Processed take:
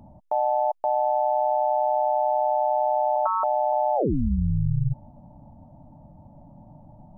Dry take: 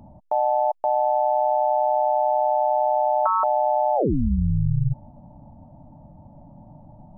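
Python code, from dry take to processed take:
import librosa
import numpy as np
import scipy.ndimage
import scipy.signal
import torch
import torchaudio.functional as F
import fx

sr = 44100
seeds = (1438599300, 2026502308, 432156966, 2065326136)

y = fx.lowpass(x, sr, hz=1400.0, slope=12, at=(3.16, 3.73))
y = y * 10.0 ** (-2.0 / 20.0)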